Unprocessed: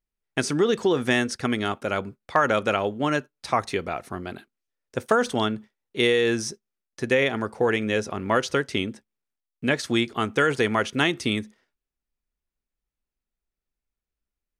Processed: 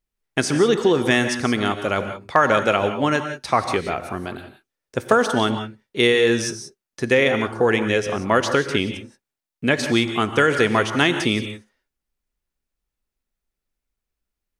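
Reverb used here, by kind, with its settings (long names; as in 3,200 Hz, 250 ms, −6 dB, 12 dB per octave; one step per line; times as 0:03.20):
reverb whose tail is shaped and stops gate 200 ms rising, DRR 8 dB
level +4 dB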